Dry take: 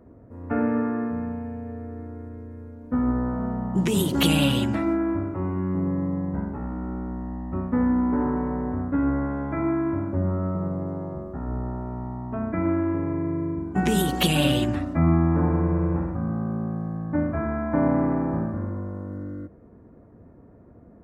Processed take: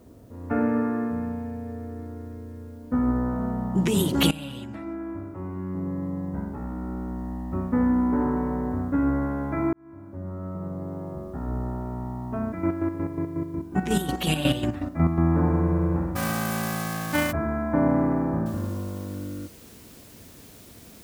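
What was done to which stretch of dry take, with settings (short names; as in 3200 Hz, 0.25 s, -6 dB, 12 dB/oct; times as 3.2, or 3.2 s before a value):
4.31–7.31 fade in, from -18 dB
9.73–11.47 fade in
12.45–15.21 chopper 5.5 Hz, depth 60%, duty 40%
16.15–17.31 spectral whitening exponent 0.3
18.46 noise floor step -68 dB -51 dB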